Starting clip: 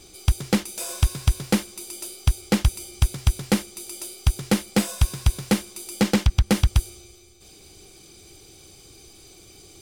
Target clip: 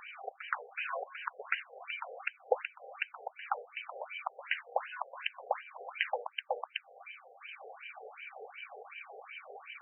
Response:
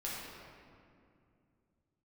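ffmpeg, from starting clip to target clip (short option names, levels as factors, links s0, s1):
-filter_complex "[0:a]highpass=52,bandreject=f=60:t=h:w=6,bandreject=f=120:t=h:w=6,bandreject=f=180:t=h:w=6,bandreject=f=240:t=h:w=6,bandreject=f=300:t=h:w=6,bandreject=f=360:t=h:w=6,bandreject=f=420:t=h:w=6,bandreject=f=480:t=h:w=6,asplit=2[s0][s1];[s1]alimiter=limit=0.133:level=0:latency=1:release=327,volume=1.06[s2];[s0][s2]amix=inputs=2:normalize=0,acompressor=threshold=0.0398:ratio=16,afftfilt=real='re*between(b*sr/1024,560*pow(2200/560,0.5+0.5*sin(2*PI*2.7*pts/sr))/1.41,560*pow(2200/560,0.5+0.5*sin(2*PI*2.7*pts/sr))*1.41)':imag='im*between(b*sr/1024,560*pow(2200/560,0.5+0.5*sin(2*PI*2.7*pts/sr))/1.41,560*pow(2200/560,0.5+0.5*sin(2*PI*2.7*pts/sr))*1.41)':win_size=1024:overlap=0.75,volume=2.99"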